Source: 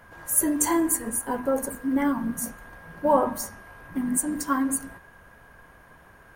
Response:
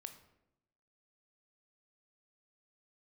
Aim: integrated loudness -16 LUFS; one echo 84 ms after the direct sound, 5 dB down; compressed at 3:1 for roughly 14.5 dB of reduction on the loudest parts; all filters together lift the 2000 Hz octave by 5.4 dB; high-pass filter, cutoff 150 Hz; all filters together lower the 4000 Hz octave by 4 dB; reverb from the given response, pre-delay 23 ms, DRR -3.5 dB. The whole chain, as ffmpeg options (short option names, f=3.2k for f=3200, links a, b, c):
-filter_complex "[0:a]highpass=150,equalizer=f=2k:t=o:g=8.5,equalizer=f=4k:t=o:g=-8.5,acompressor=threshold=-36dB:ratio=3,aecho=1:1:84:0.562,asplit=2[a][b];[1:a]atrim=start_sample=2205,adelay=23[c];[b][c]afir=irnorm=-1:irlink=0,volume=8.5dB[d];[a][d]amix=inputs=2:normalize=0,volume=15dB"